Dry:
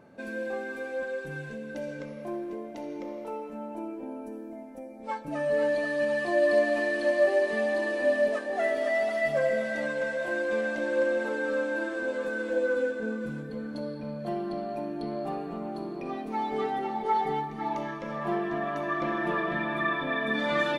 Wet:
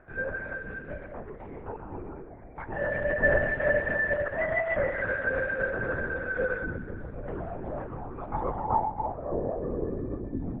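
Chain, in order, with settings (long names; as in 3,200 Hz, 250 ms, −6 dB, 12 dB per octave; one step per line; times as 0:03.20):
time stretch by phase vocoder 0.51×
linear-prediction vocoder at 8 kHz whisper
low-pass filter sweep 1,700 Hz → 250 Hz, 0:07.94–0:10.55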